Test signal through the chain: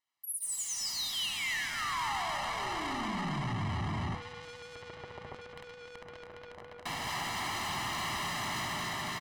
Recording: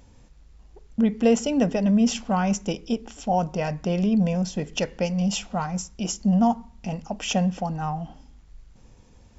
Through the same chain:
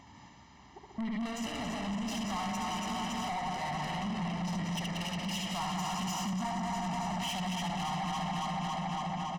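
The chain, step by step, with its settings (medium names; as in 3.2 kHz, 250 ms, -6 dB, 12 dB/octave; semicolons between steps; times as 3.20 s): backward echo that repeats 140 ms, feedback 84%, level -6 dB; high-pass 77 Hz 24 dB/octave; reverse bouncing-ball echo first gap 70 ms, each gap 1.6×, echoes 5; overdrive pedal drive 16 dB, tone 3.4 kHz, clips at -3 dBFS; dynamic bell 380 Hz, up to -7 dB, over -28 dBFS, Q 0.79; vibrato 7.5 Hz 26 cents; compression 12:1, threshold -22 dBFS; treble shelf 6.2 kHz -9.5 dB; saturation -31 dBFS; comb 1 ms, depth 85%; trim -4 dB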